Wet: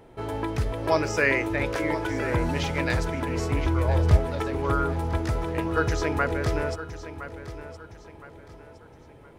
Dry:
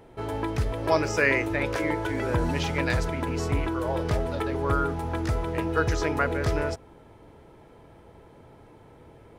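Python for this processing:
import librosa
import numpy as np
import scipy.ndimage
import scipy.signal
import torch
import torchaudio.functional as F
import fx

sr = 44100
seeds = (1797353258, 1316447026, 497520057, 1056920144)

y = fx.peak_eq(x, sr, hz=73.0, db=13.5, octaves=1.3, at=(3.64, 4.17))
y = fx.echo_feedback(y, sr, ms=1015, feedback_pct=35, wet_db=-13.0)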